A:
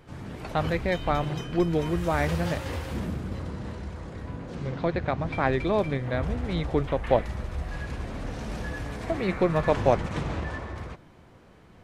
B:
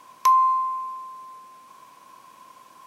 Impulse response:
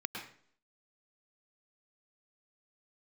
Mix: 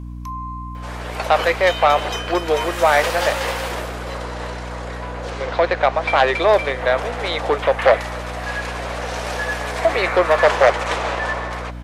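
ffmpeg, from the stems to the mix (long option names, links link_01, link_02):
-filter_complex "[0:a]aeval=exprs='0.447*sin(PI/2*2.24*val(0)/0.447)':channel_layout=same,adelay=750,volume=-1dB[link_01];[1:a]alimiter=limit=-19.5dB:level=0:latency=1:release=358,volume=-13dB,asplit=2[link_02][link_03];[link_03]volume=-19.5dB[link_04];[2:a]atrim=start_sample=2205[link_05];[link_04][link_05]afir=irnorm=-1:irlink=0[link_06];[link_01][link_02][link_06]amix=inputs=3:normalize=0,highpass=frequency=500:width=0.5412,highpass=frequency=500:width=1.3066,acontrast=33,aeval=exprs='val(0)+0.0316*(sin(2*PI*60*n/s)+sin(2*PI*2*60*n/s)/2+sin(2*PI*3*60*n/s)/3+sin(2*PI*4*60*n/s)/4+sin(2*PI*5*60*n/s)/5)':channel_layout=same"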